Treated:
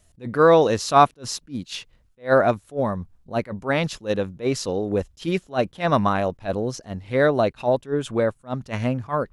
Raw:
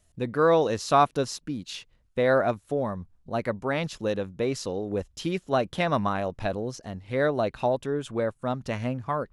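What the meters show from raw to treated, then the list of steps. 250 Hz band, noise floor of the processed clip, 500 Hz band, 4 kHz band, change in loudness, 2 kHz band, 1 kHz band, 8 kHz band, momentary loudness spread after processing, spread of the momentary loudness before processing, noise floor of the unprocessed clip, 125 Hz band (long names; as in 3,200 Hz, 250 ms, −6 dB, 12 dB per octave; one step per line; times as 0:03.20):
+4.5 dB, −60 dBFS, +4.5 dB, +4.5 dB, +5.0 dB, +4.5 dB, +5.0 dB, +5.5 dB, 14 LU, 11 LU, −65 dBFS, +4.5 dB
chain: level that may rise only so fast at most 290 dB per second
level +6 dB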